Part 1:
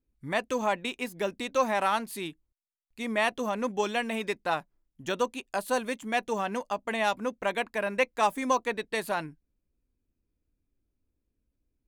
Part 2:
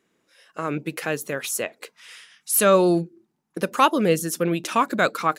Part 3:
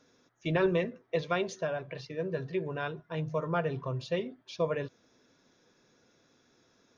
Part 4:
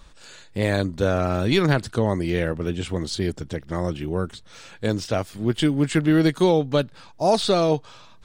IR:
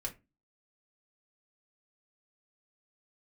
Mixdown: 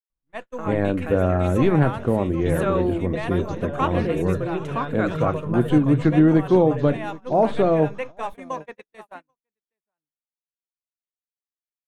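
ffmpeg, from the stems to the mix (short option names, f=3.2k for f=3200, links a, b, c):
-filter_complex "[0:a]crystalizer=i=1.5:c=0,volume=-7.5dB,asplit=3[a][b][c];[b]volume=-9dB[d];[c]volume=-8dB[e];[1:a]volume=-9.5dB,asplit=3[f][g][h];[g]volume=-6.5dB[i];[h]volume=-18dB[j];[2:a]aexciter=amount=10.9:drive=7.9:freq=3.9k,acompressor=threshold=-30dB:ratio=6,bass=f=250:g=6,treble=f=4k:g=-14,adelay=2000,volume=3dB,asplit=2[k][l];[l]volume=-7.5dB[m];[3:a]equalizer=f=5.4k:t=o:w=2.9:g=-11,adelay=100,volume=-1dB,asplit=3[n][o][p];[o]volume=-7.5dB[q];[p]volume=-18.5dB[r];[4:a]atrim=start_sample=2205[s];[d][i][q]amix=inputs=3:normalize=0[t];[t][s]afir=irnorm=-1:irlink=0[u];[e][j][m][r]amix=inputs=4:normalize=0,aecho=0:1:779:1[v];[a][f][k][n][u][v]amix=inputs=6:normalize=0,aemphasis=mode=reproduction:type=75fm,agate=range=-43dB:threshold=-32dB:ratio=16:detection=peak,equalizer=f=4.9k:t=o:w=0.56:g=-10.5"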